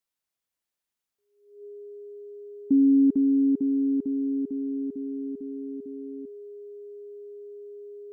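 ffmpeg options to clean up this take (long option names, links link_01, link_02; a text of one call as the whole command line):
ffmpeg -i in.wav -af "bandreject=frequency=410:width=30" out.wav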